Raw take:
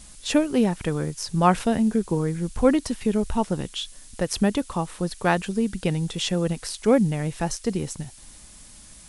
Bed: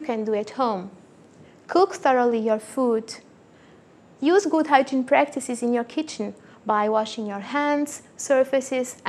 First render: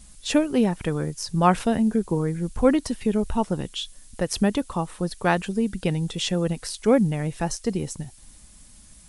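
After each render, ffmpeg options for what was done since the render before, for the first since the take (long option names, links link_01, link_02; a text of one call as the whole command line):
ffmpeg -i in.wav -af "afftdn=noise_reduction=6:noise_floor=-47" out.wav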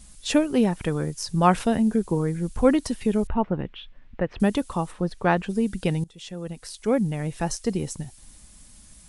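ffmpeg -i in.wav -filter_complex "[0:a]asettb=1/sr,asplit=3[link_01][link_02][link_03];[link_01]atrim=end=3.274[link_04];[link_02]atrim=start=3.27:end=4.4,asetpts=PTS-STARTPTS,afade=type=in:duration=0.004:curve=qsin,afade=type=out:start_time=1.126:duration=0.004:curve=qsin,lowpass=frequency=2500:width=0.5412,lowpass=frequency=2500:width=1.3066[link_05];[link_03]atrim=start=4.396[link_06];[link_04][link_05]acrossfade=duration=0.004:curve1=hsin:curve2=qsin[link_07];[link_07][link_06]acrossfade=duration=0.004:curve1=qsin:curve2=hsin,asplit=3[link_08][link_09][link_10];[link_08]afade=type=out:start_time=4.91:duration=0.02[link_11];[link_09]aemphasis=mode=reproduction:type=75fm,afade=type=in:start_time=4.91:duration=0.02,afade=type=out:start_time=5.48:duration=0.02[link_12];[link_10]afade=type=in:start_time=5.48:duration=0.02[link_13];[link_11][link_12][link_13]amix=inputs=3:normalize=0,asplit=2[link_14][link_15];[link_14]atrim=end=6.04,asetpts=PTS-STARTPTS,afade=type=out:start_time=6.036:duration=0.004:curve=hsin:silence=0.0794328[link_16];[link_15]atrim=start=6.04,asetpts=PTS-STARTPTS,afade=type=in:duration=1.48:silence=0.0794328[link_17];[link_16][link_17]concat=n=2:v=0:a=1" out.wav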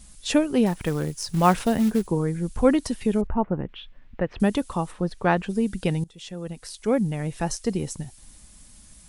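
ffmpeg -i in.wav -filter_complex "[0:a]asettb=1/sr,asplit=3[link_01][link_02][link_03];[link_01]atrim=end=0.664[link_04];[link_02]atrim=start=0.66:end=2.07,asetpts=PTS-STARTPTS,afade=type=in:duration=0.004:curve=qsin,afade=type=out:start_time=1.406:duration=0.004:curve=qsin,acrusher=bits=5:mode=log:mix=0:aa=0.000001[link_05];[link_03]atrim=start=2.066[link_06];[link_04][link_05]acrossfade=duration=0.004:curve1=hsin:curve2=qsin[link_07];[link_07][link_06]acrossfade=duration=0.004:curve1=qsin:curve2=hsin,asettb=1/sr,asplit=3[link_08][link_09][link_10];[link_08]atrim=end=3.214[link_11];[link_09]atrim=start=3.21:end=3.69,asetpts=PTS-STARTPTS,afade=type=in:duration=0.004:curve=qsin,afade=type=out:start_time=0.476:duration=0.004:curve=qsin,lowpass=1700[link_12];[link_10]atrim=start=3.686[link_13];[link_11][link_12]acrossfade=duration=0.004:curve1=hsin:curve2=qsin[link_14];[link_14][link_13]acrossfade=duration=0.004:curve1=qsin:curve2=hsin" out.wav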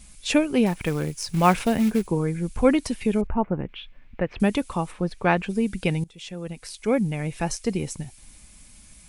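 ffmpeg -i in.wav -af "equalizer=frequency=2300:width_type=o:width=0.46:gain=8,bandreject=frequency=1900:width=23" out.wav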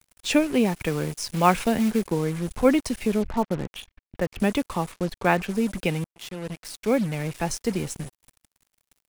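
ffmpeg -i in.wav -filter_complex "[0:a]acrossover=split=190|1600[link_01][link_02][link_03];[link_01]asoftclip=type=hard:threshold=-32dB[link_04];[link_04][link_02][link_03]amix=inputs=3:normalize=0,acrusher=bits=5:mix=0:aa=0.5" out.wav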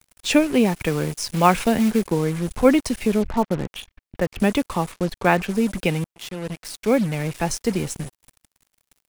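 ffmpeg -i in.wav -af "volume=3.5dB,alimiter=limit=-2dB:level=0:latency=1" out.wav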